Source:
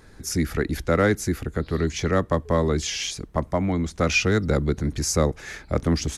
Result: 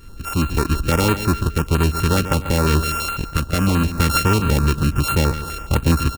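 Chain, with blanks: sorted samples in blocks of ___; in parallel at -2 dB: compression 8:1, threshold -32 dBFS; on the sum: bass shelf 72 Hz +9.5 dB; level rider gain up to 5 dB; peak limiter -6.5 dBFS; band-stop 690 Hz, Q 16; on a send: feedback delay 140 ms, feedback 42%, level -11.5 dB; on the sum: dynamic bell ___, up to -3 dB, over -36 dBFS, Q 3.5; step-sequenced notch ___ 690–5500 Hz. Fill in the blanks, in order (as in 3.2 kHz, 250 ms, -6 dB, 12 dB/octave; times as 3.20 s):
32 samples, 760 Hz, 12 Hz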